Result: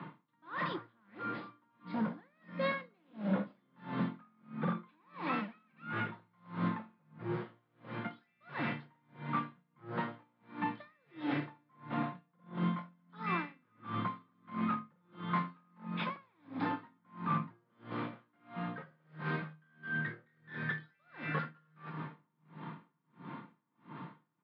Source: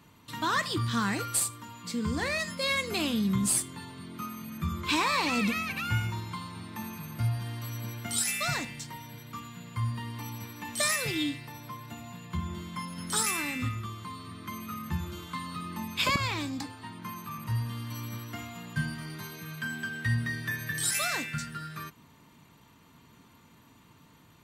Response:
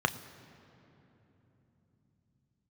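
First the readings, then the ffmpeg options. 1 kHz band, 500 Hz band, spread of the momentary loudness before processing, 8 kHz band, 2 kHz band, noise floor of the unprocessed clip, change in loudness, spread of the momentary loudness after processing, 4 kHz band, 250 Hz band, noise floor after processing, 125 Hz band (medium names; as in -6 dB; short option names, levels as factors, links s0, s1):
-4.0 dB, -4.0 dB, 14 LU, under -40 dB, -8.5 dB, -58 dBFS, -8.0 dB, 18 LU, -18.5 dB, -4.5 dB, -76 dBFS, -8.5 dB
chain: -filter_complex "[0:a]areverse,acompressor=threshold=0.00891:ratio=6,areverse,lowshelf=f=100:t=q:w=3:g=-9,aresample=11025,aeval=exprs='0.0119*(abs(mod(val(0)/0.0119+3,4)-2)-1)':c=same,aresample=44100,acrossover=split=190 2300:gain=0.1 1 0.126[s0][s1][s2];[s0][s1][s2]amix=inputs=3:normalize=0,aecho=1:1:236:0.168[s3];[1:a]atrim=start_sample=2205,asetrate=52920,aresample=44100[s4];[s3][s4]afir=irnorm=-1:irlink=0,aeval=exprs='val(0)*pow(10,-40*(0.5-0.5*cos(2*PI*1.5*n/s))/20)':c=same,volume=2"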